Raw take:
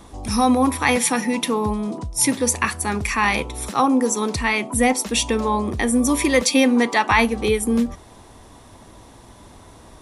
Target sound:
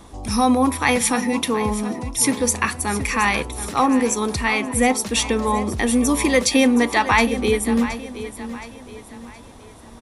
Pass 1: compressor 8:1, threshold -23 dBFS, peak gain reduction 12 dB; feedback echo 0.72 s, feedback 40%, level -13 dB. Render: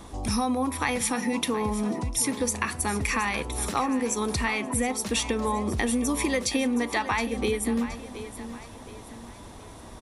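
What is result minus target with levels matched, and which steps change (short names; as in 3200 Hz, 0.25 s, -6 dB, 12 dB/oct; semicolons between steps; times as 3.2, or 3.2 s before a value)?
compressor: peak gain reduction +12 dB
remove: compressor 8:1, threshold -23 dBFS, peak gain reduction 12 dB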